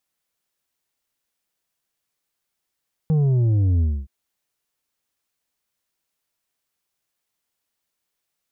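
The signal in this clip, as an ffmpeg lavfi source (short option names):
-f lavfi -i "aevalsrc='0.158*clip((0.97-t)/0.26,0,1)*tanh(2*sin(2*PI*160*0.97/log(65/160)*(exp(log(65/160)*t/0.97)-1)))/tanh(2)':d=0.97:s=44100"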